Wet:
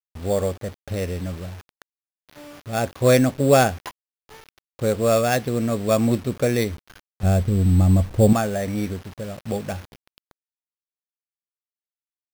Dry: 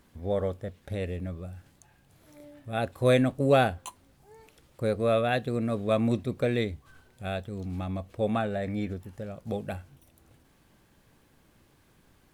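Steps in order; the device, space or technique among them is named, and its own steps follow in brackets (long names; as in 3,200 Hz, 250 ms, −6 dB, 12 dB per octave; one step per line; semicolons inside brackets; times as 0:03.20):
0:07.23–0:08.33: spectral tilt −4 dB per octave
early 8-bit sampler (sample-rate reduction 8,000 Hz, jitter 0%; bit reduction 8 bits)
level +6 dB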